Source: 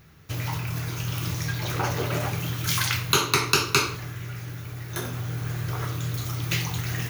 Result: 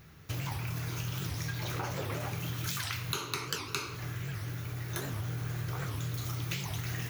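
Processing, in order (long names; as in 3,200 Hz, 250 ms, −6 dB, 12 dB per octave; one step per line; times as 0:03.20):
downward compressor 6 to 1, threshold −31 dBFS, peak gain reduction 14.5 dB
wow of a warped record 78 rpm, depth 250 cents
level −1.5 dB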